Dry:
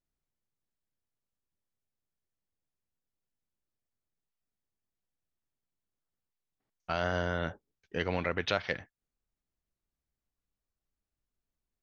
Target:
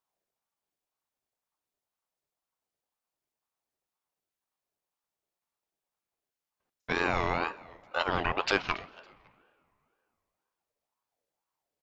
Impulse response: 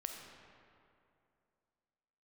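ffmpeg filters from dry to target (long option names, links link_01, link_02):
-filter_complex "[0:a]highpass=48,asplit=3[link_01][link_02][link_03];[link_02]adelay=279,afreqshift=-75,volume=-22.5dB[link_04];[link_03]adelay=558,afreqshift=-150,volume=-32.7dB[link_05];[link_01][link_04][link_05]amix=inputs=3:normalize=0,asplit=2[link_06][link_07];[1:a]atrim=start_sample=2205[link_08];[link_07][link_08]afir=irnorm=-1:irlink=0,volume=-15.5dB[link_09];[link_06][link_09]amix=inputs=2:normalize=0,aeval=exprs='val(0)*sin(2*PI*770*n/s+770*0.35/2*sin(2*PI*2*n/s))':channel_layout=same,volume=4.5dB"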